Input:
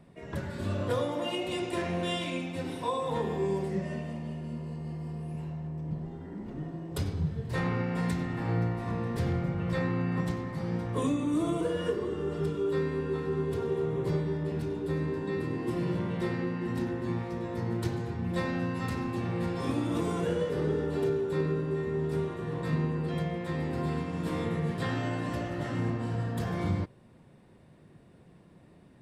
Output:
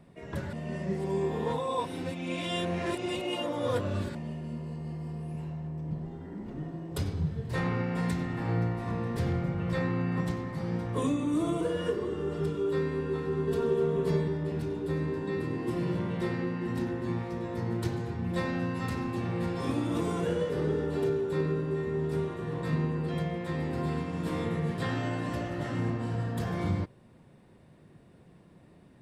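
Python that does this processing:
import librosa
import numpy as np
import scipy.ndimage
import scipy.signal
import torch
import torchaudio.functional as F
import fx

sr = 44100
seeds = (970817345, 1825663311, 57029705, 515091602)

y = fx.comb(x, sr, ms=4.5, depth=0.97, at=(13.47, 14.28))
y = fx.edit(y, sr, fx.reverse_span(start_s=0.53, length_s=3.62), tone=tone)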